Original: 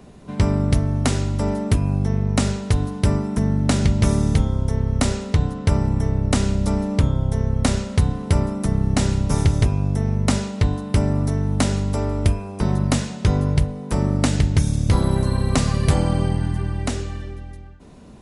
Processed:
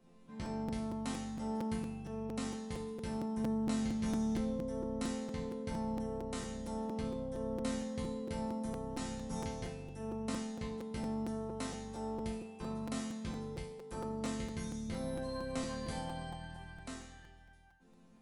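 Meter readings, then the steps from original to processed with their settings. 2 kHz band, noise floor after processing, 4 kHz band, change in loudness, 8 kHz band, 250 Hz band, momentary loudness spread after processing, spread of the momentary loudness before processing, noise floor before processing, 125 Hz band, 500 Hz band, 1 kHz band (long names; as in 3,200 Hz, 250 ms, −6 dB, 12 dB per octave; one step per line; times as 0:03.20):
−17.0 dB, −60 dBFS, −17.5 dB, −18.5 dB, −18.0 dB, −14.5 dB, 9 LU, 4 LU, −37 dBFS, −27.0 dB, −13.5 dB, −14.0 dB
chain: resonators tuned to a chord F3 major, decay 0.64 s
regular buffer underruns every 0.23 s, samples 256, repeat, from 0:00.45
level +2 dB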